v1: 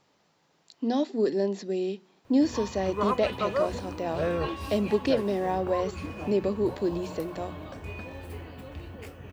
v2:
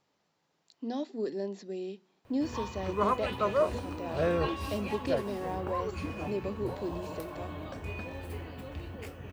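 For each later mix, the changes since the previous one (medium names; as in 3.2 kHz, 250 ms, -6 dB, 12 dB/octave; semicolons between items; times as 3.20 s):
speech -8.5 dB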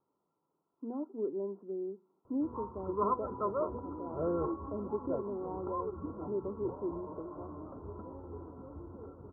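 master: add rippled Chebyshev low-pass 1.4 kHz, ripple 9 dB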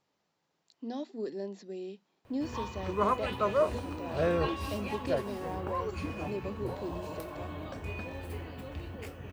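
speech: send off; master: remove rippled Chebyshev low-pass 1.4 kHz, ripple 9 dB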